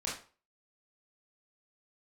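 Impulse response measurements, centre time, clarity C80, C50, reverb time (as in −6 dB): 38 ms, 11.0 dB, 4.5 dB, 0.40 s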